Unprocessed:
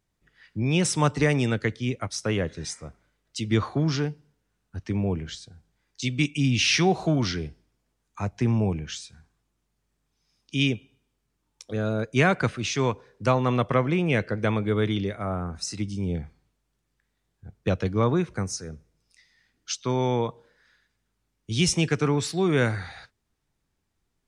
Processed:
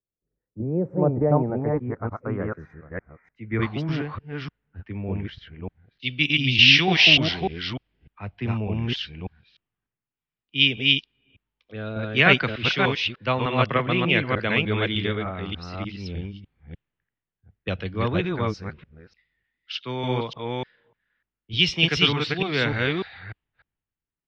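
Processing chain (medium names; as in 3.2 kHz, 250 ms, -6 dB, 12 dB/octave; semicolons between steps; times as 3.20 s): chunks repeated in reverse 299 ms, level -0.5 dB; level-controlled noise filter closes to 1.8 kHz, open at -18 dBFS; high-order bell 3.9 kHz -10 dB 1.2 oct, from 3.61 s +8 dB, from 6.01 s +15.5 dB; low-pass sweep 500 Hz -> 2.1 kHz, 0.80–3.27 s; three bands expanded up and down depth 40%; trim -4 dB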